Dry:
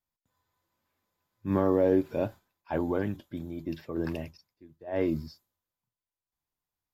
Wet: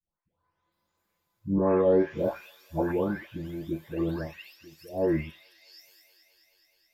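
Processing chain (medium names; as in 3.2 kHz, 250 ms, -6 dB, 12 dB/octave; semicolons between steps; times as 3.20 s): delay that grows with frequency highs late, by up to 722 ms; feedback echo behind a high-pass 213 ms, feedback 78%, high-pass 3.1 kHz, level -9 dB; trim +4 dB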